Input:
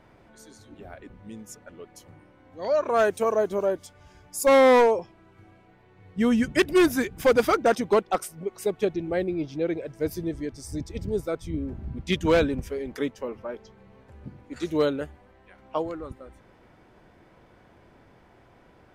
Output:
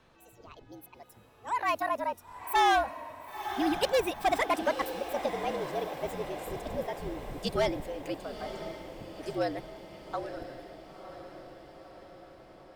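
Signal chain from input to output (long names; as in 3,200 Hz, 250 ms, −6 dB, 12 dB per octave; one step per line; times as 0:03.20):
gliding playback speed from 182% → 115%
feedback delay with all-pass diffusion 984 ms, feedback 60%, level −10 dB
frequency shifter −65 Hz
level −7 dB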